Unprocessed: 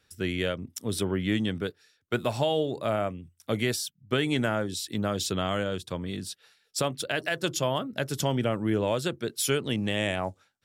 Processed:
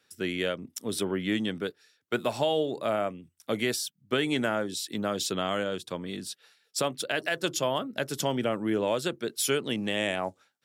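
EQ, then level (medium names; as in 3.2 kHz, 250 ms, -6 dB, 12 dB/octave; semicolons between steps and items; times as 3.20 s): high-pass 190 Hz 12 dB/octave; 0.0 dB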